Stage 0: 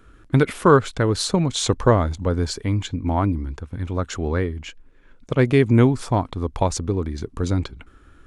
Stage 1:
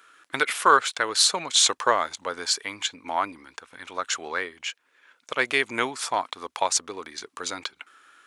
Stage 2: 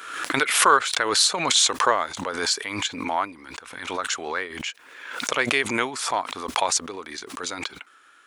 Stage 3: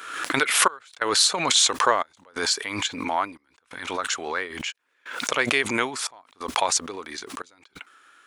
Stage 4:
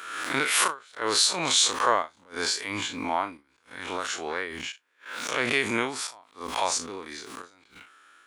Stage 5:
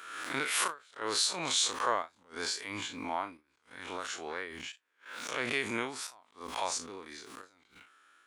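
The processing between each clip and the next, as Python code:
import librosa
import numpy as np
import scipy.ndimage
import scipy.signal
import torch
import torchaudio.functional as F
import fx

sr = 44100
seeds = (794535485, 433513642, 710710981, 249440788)

y1 = scipy.signal.sosfilt(scipy.signal.bessel(2, 1400.0, 'highpass', norm='mag', fs=sr, output='sos'), x)
y1 = F.gain(torch.from_numpy(y1), 6.5).numpy()
y2 = fx.pre_swell(y1, sr, db_per_s=54.0)
y3 = fx.step_gate(y2, sr, bpm=89, pattern='xxxx..xx', floor_db=-24.0, edge_ms=4.5)
y4 = fx.spec_blur(y3, sr, span_ms=81.0)
y5 = fx.record_warp(y4, sr, rpm=45.0, depth_cents=100.0)
y5 = F.gain(torch.from_numpy(y5), -7.5).numpy()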